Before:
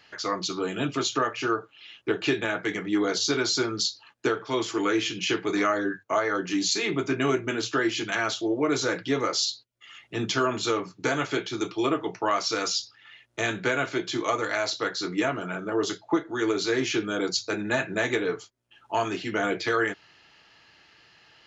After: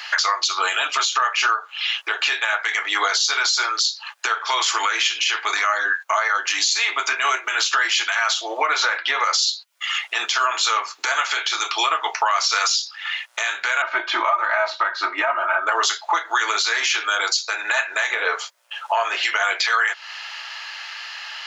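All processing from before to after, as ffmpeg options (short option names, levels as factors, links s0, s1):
-filter_complex "[0:a]asettb=1/sr,asplit=3[s0][s1][s2];[s0]atrim=end=8.664[s3];[s1]atrim=start=8.66:end=9.24,asetpts=PTS-STARTPTS,afade=t=in:d=0.004:c=qsin,afade=t=out:st=0.576:d=0.004:c=qsin,lowpass=3200,bandreject=f=336.9:t=h:w=4,bandreject=f=673.8:t=h:w=4,bandreject=f=1010.7:t=h:w=4,bandreject=f=1347.6:t=h:w=4,bandreject=f=1684.5:t=h:w=4,bandreject=f=2021.4:t=h:w=4,bandreject=f=2358.3:t=h:w=4,bandreject=f=2695.2:t=h:w=4,bandreject=f=3032.1:t=h:w=4,bandreject=f=3369:t=h:w=4,bandreject=f=3705.9:t=h:w=4,bandreject=f=4042.8:t=h:w=4[s4];[s2]atrim=start=9.236[s5];[s3][s4]acrossfade=d=0.004:c1=hsin:c2=qsin[s6];[s6][s5]acrossfade=d=0.004:c1=qsin:c2=hsin,asettb=1/sr,asplit=3[s7][s8][s9];[s7]atrim=end=13.824[s10];[s8]atrim=start=13.82:end=15.67,asetpts=PTS-STARTPTS,afade=t=in:d=0.004:c=qsin,afade=t=out:st=1.846:d=0.004:c=qsin,lowpass=1400,aecho=1:1:3.2:0.83,atrim=end_sample=81585[s11];[s9]atrim=start=15.666[s12];[s10][s11]acrossfade=d=0.004:c1=hsin:c2=qsin[s13];[s13][s12]acrossfade=d=0.004:c1=qsin:c2=hsin,asettb=1/sr,asplit=3[s14][s15][s16];[s14]atrim=end=18.114[s17];[s15]atrim=start=18.11:end=19.23,asetpts=PTS-STARTPTS,afade=t=in:d=0.004:c=qsin,afade=t=out:st=1.116:d=0.004:c=qsin,acrossover=split=3300[s18][s19];[s19]acompressor=threshold=0.002:ratio=4:attack=1:release=60[s20];[s18][s20]amix=inputs=2:normalize=0,equalizer=f=540:t=o:w=0.61:g=9.5[s21];[s16]atrim=start=19.226[s22];[s17][s21]acrossfade=d=0.004:c1=hsin:c2=qsin[s23];[s23][s22]acrossfade=d=0.004:c1=qsin:c2=hsin,highpass=f=860:w=0.5412,highpass=f=860:w=1.3066,acompressor=threshold=0.0112:ratio=6,alimiter=level_in=39.8:limit=0.891:release=50:level=0:latency=1,volume=0.376"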